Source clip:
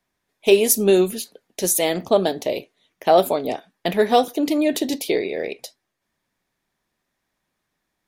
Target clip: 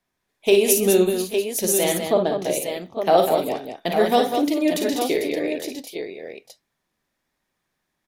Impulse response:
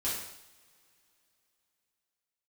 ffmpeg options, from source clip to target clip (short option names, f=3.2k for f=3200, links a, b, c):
-filter_complex "[0:a]asettb=1/sr,asplit=3[a][b][c];[a]atrim=end=2.044[d];[b]atrim=start=2.04:end=2.45,asetpts=PTS-STARTPTS,afade=t=in:d=0.004:c=qsin,afade=t=out:st=0.406:d=0.004:c=qsin,aemphasis=mode=reproduction:type=75kf[e];[c]atrim=start=2.446[f];[d][e]acrossfade=d=0.004:c1=hsin:c2=qsin[g];[g][f]acrossfade=d=0.004:c1=qsin:c2=hsin,aecho=1:1:42|55|127|199|835|858:0.316|0.447|0.106|0.473|0.119|0.422,volume=-2.5dB"